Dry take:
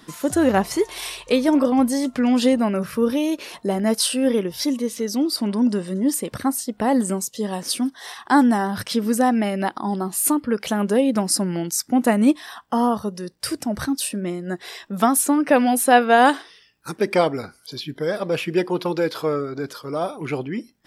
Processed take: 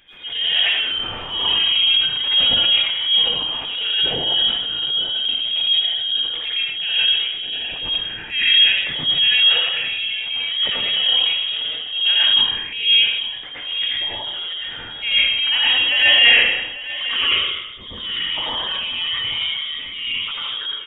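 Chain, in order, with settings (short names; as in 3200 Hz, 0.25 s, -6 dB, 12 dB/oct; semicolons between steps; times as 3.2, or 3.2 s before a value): inverted band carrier 3500 Hz; on a send: echo 0.843 s -15 dB; on the sum: plate-style reverb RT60 0.94 s, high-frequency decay 0.75×, pre-delay 75 ms, DRR -7.5 dB; transient shaper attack -8 dB, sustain +4 dB; gain -5.5 dB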